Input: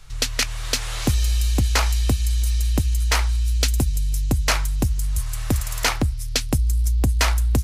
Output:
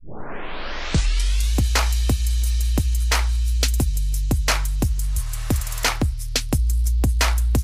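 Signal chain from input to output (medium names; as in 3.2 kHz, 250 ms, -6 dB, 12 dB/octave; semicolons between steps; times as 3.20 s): tape start-up on the opening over 1.58 s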